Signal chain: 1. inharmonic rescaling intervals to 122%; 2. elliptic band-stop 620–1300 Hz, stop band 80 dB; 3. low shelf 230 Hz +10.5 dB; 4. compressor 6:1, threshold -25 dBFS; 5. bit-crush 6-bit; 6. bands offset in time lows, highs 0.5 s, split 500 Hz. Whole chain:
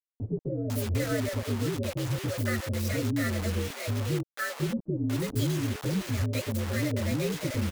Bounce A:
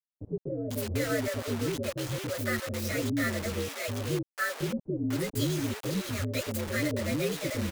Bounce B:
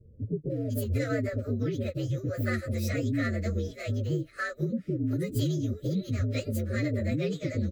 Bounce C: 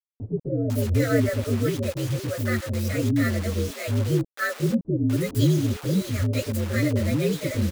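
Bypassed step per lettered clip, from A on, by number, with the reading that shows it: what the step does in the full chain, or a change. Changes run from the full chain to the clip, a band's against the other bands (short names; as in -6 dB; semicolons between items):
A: 3, 125 Hz band -5.5 dB; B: 5, distortion -12 dB; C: 4, mean gain reduction 5.0 dB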